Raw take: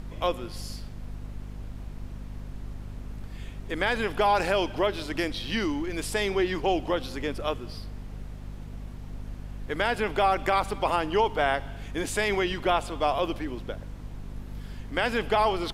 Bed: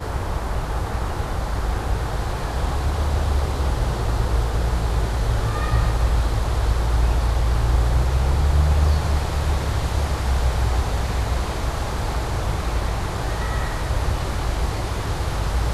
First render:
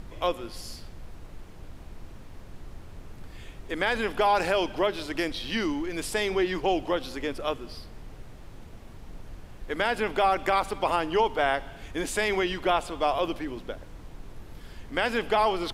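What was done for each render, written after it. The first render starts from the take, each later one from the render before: hum notches 50/100/150/200/250 Hz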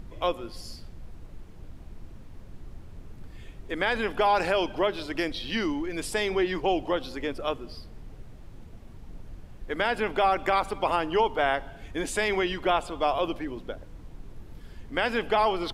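noise reduction 6 dB, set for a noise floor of -45 dBFS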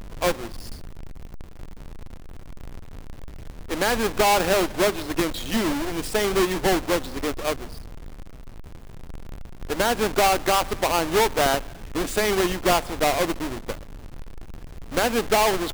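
square wave that keeps the level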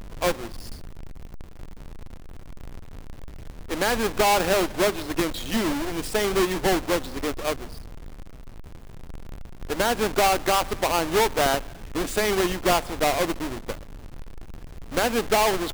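trim -1 dB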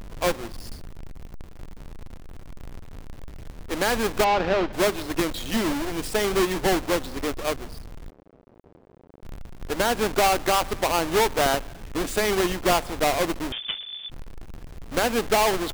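4.24–4.73 s: distance through air 220 m; 8.10–9.23 s: band-pass filter 450 Hz, Q 1.1; 13.52–14.10 s: frequency inversion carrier 3.5 kHz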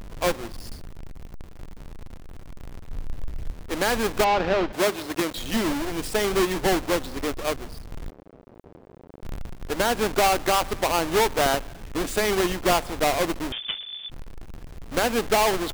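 2.89–3.54 s: bass shelf 74 Hz +11 dB; 4.72–5.36 s: high-pass 180 Hz 6 dB/octave; 7.92–9.54 s: gain +5 dB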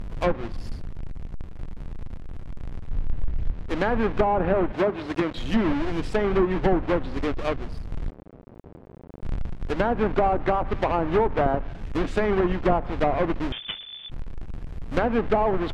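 low-pass that closes with the level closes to 990 Hz, closed at -17 dBFS; tone controls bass +6 dB, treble -9 dB

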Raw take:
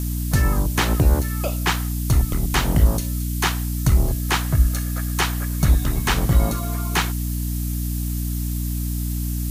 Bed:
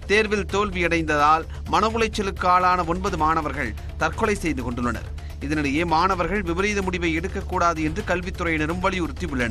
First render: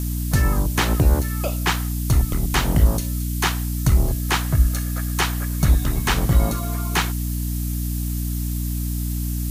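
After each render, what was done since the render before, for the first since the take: no audible change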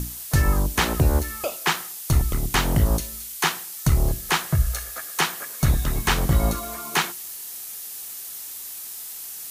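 hum notches 60/120/180/240/300/360 Hz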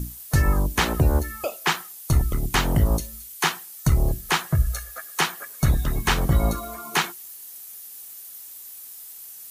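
noise reduction 9 dB, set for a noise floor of -36 dBFS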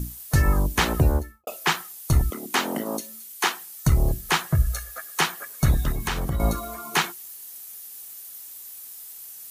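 1.02–1.47 s: studio fade out; 2.30–3.60 s: Chebyshev high-pass 220 Hz, order 4; 5.92–6.40 s: compression 3:1, threshold -24 dBFS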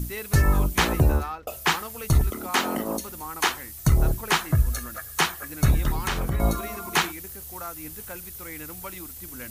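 add bed -17 dB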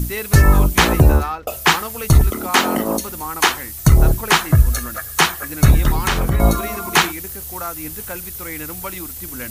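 trim +8.5 dB; peak limiter -1 dBFS, peak gain reduction 1.5 dB

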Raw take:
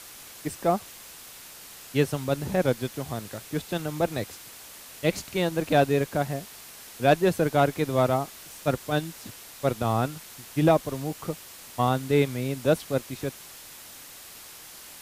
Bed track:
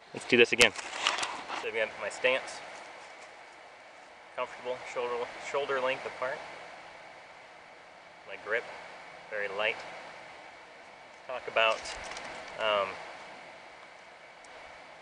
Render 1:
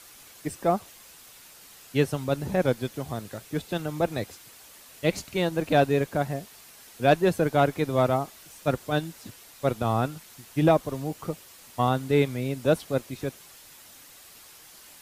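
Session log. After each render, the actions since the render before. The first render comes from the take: noise reduction 6 dB, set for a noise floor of -46 dBFS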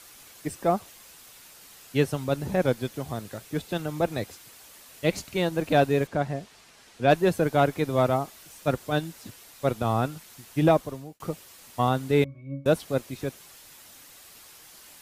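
6.07–7.10 s: distance through air 61 m; 10.77–11.20 s: fade out; 12.24–12.66 s: pitch-class resonator C#, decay 0.28 s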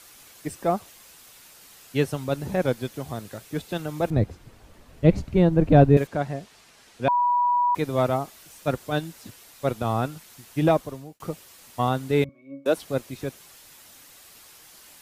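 4.10–5.97 s: tilt EQ -4.5 dB/octave; 7.08–7.75 s: bleep 974 Hz -18 dBFS; 12.29–12.77 s: high-pass 240 Hz 24 dB/octave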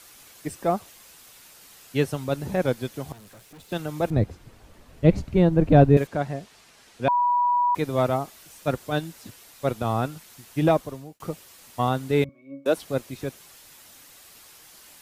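3.12–3.72 s: valve stage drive 45 dB, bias 0.65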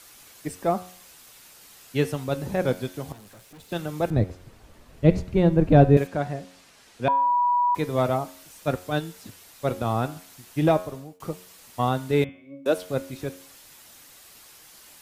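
de-hum 90.82 Hz, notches 40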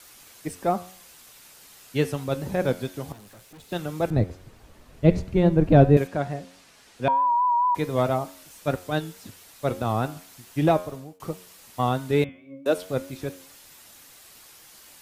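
vibrato 4.6 Hz 47 cents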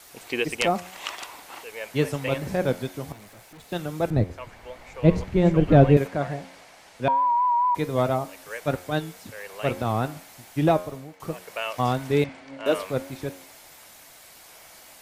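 add bed track -5 dB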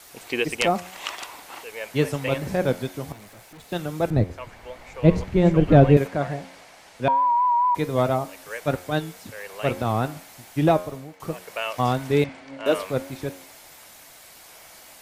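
trim +1.5 dB; peak limiter -3 dBFS, peak gain reduction 1.5 dB

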